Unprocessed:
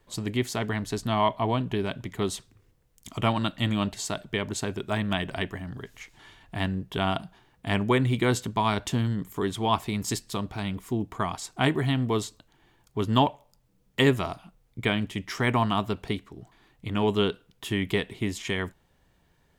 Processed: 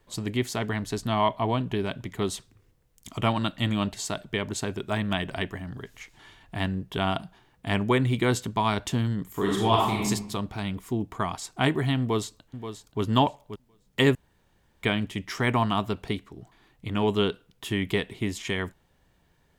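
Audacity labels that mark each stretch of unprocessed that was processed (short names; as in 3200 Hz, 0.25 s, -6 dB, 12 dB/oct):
9.310000	10.060000	reverb throw, RT60 0.84 s, DRR -2.5 dB
12.000000	13.020000	echo throw 0.53 s, feedback 20%, level -10.5 dB
14.150000	14.830000	room tone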